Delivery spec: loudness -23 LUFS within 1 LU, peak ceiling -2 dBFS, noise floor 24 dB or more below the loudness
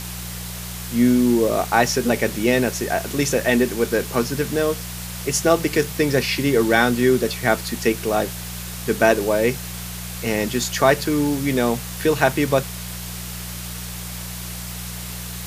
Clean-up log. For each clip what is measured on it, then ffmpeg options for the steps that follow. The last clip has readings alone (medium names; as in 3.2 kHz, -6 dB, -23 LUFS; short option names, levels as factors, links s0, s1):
hum 60 Hz; highest harmonic 180 Hz; hum level -31 dBFS; noise floor -32 dBFS; noise floor target -45 dBFS; loudness -21.0 LUFS; peak level -1.5 dBFS; loudness target -23.0 LUFS
-> -af "bandreject=f=60:t=h:w=4,bandreject=f=120:t=h:w=4,bandreject=f=180:t=h:w=4"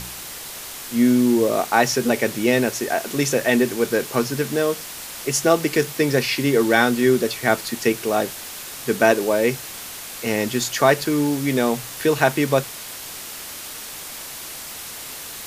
hum not found; noise floor -35 dBFS; noise floor target -44 dBFS
-> -af "afftdn=nr=9:nf=-35"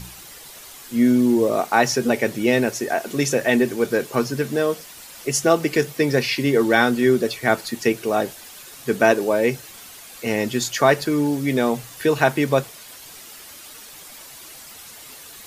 noise floor -42 dBFS; noise floor target -45 dBFS
-> -af "afftdn=nr=6:nf=-42"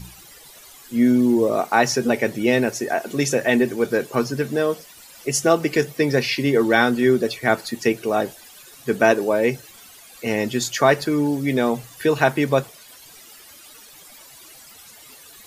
noise floor -46 dBFS; loudness -20.5 LUFS; peak level -1.5 dBFS; loudness target -23.0 LUFS
-> -af "volume=0.75"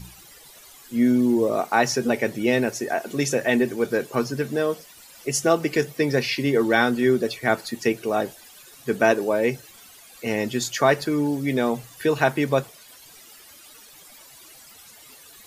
loudness -23.0 LUFS; peak level -4.0 dBFS; noise floor -48 dBFS